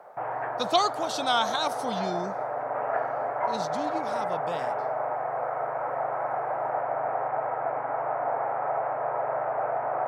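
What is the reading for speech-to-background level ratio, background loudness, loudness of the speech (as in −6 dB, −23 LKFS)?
0.0 dB, −30.0 LKFS, −30.0 LKFS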